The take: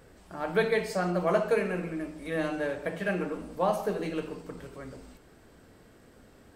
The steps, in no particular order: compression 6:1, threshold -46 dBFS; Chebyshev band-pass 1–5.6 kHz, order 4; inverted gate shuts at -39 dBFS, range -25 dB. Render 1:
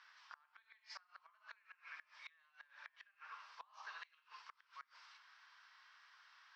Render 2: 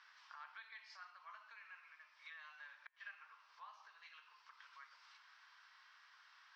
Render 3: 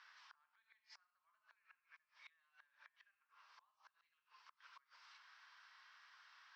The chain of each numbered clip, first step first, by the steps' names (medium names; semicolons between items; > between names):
Chebyshev band-pass > compression > inverted gate; compression > Chebyshev band-pass > inverted gate; compression > inverted gate > Chebyshev band-pass